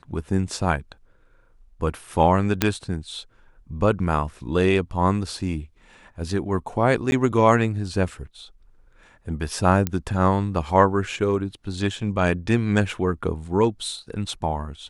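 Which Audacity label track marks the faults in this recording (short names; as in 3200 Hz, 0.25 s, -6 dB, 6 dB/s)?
2.620000	2.620000	pop -2 dBFS
7.110000	7.120000	gap 11 ms
9.870000	9.870000	pop -9 dBFS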